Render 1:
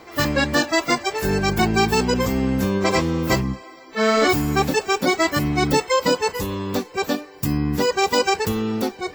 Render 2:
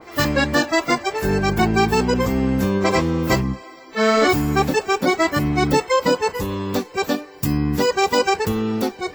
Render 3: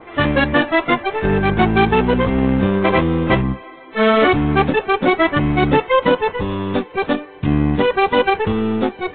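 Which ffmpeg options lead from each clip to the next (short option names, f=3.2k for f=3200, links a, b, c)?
-af "adynamicequalizer=threshold=0.0178:dfrequency=2500:dqfactor=0.7:tfrequency=2500:tqfactor=0.7:attack=5:release=100:ratio=0.375:range=2.5:mode=cutabove:tftype=highshelf,volume=1.5dB"
-af "aeval=exprs='0.501*(cos(1*acos(clip(val(0)/0.501,-1,1)))-cos(1*PI/2))+0.0794*(cos(6*acos(clip(val(0)/0.501,-1,1)))-cos(6*PI/2))+0.0708*(cos(8*acos(clip(val(0)/0.501,-1,1)))-cos(8*PI/2))':c=same,volume=3dB" -ar 8000 -c:a pcm_mulaw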